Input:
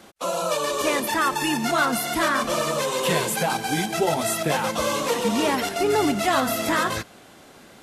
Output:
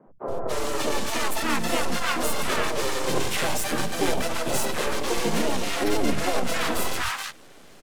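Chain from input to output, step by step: half-wave rectifier; three bands offset in time mids, lows, highs 70/280 ms, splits 160/1100 Hz; harmoniser -5 st -1 dB, +3 st -16 dB

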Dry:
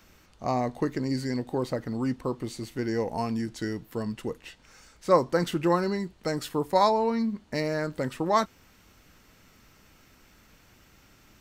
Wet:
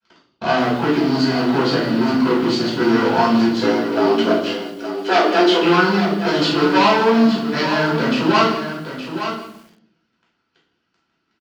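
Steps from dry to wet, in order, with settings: reverb removal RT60 0.65 s; notches 60/120/180/240/300/360/420 Hz; expander -54 dBFS; tilt -2.5 dB/oct; sample leveller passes 5; limiter -13 dBFS, peak gain reduction 6.5 dB; 3.5–5.63 frequency shift +180 Hz; speaker cabinet 290–6100 Hz, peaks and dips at 570 Hz -7 dB, 1400 Hz +7 dB, 3000 Hz +8 dB, 4500 Hz +9 dB; echo 0.868 s -9.5 dB; reverb RT60 0.65 s, pre-delay 4 ms, DRR -5.5 dB; lo-fi delay 0.166 s, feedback 35%, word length 5-bit, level -14 dB; gain -7 dB

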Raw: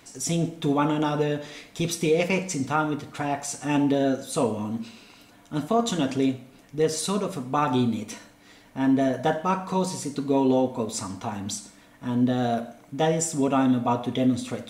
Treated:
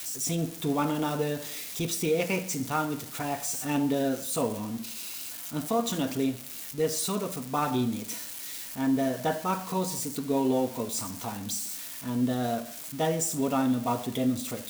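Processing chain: switching spikes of -25 dBFS; gain -4.5 dB

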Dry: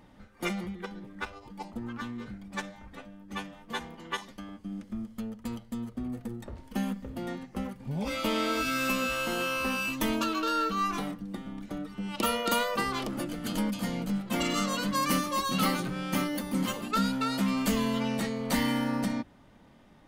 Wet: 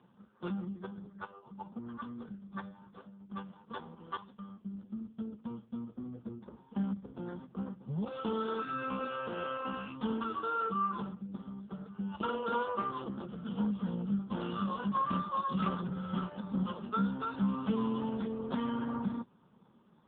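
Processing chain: fixed phaser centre 440 Hz, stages 8; wrapped overs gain 17.5 dB; gain -1 dB; AMR-NB 5.15 kbps 8000 Hz

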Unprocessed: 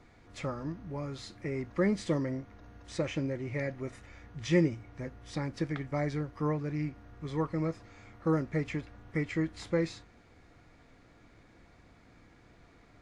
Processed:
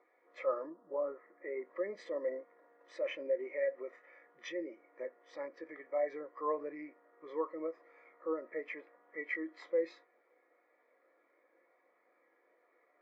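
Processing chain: per-bin compression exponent 0.6; 0.69–1.6 LPF 1500 Hz -> 2800 Hz 24 dB/oct; Schroeder reverb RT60 0.32 s, combs from 28 ms, DRR 17.5 dB; limiter -24.5 dBFS, peak gain reduction 11.5 dB; HPF 610 Hz 12 dB/oct; spectral expander 2.5:1; gain +2 dB

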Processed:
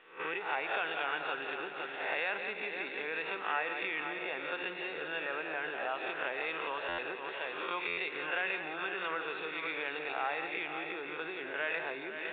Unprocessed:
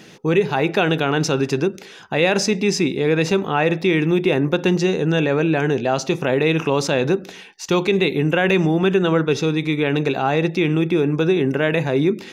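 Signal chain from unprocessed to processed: spectral swells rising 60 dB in 0.63 s; multi-head echo 0.17 s, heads first and third, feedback 43%, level -10 dB; gate -25 dBFS, range -10 dB; compressor 6:1, threshold -21 dBFS, peak gain reduction 10.5 dB; HPF 1100 Hz 12 dB/oct; air absorption 420 m; stuck buffer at 6.88/7.87, samples 512, times 8; µ-law 64 kbps 8000 Hz

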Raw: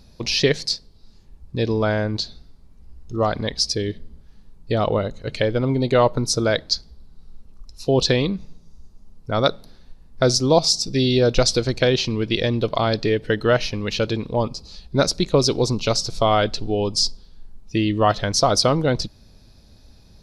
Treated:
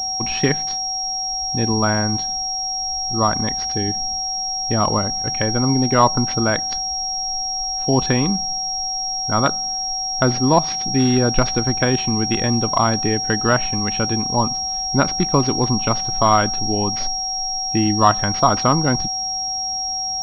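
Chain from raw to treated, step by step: ten-band EQ 250 Hz +5 dB, 500 Hz -9 dB, 1000 Hz +9 dB; whine 760 Hz -30 dBFS; pulse-width modulation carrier 5600 Hz; gain +1 dB

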